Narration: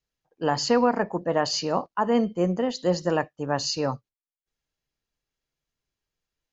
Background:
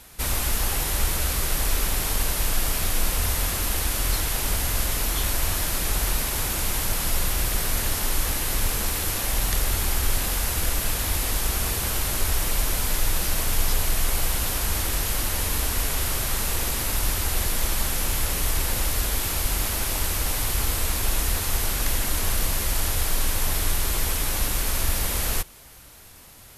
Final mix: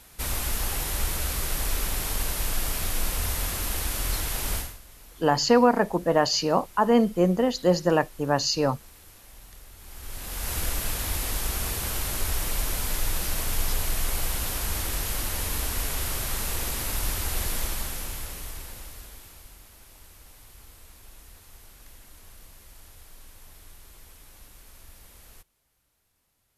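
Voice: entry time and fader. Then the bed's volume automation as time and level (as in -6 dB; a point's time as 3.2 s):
4.80 s, +2.5 dB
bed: 4.58 s -4 dB
4.8 s -24.5 dB
9.75 s -24.5 dB
10.53 s -4 dB
17.56 s -4 dB
19.64 s -25.5 dB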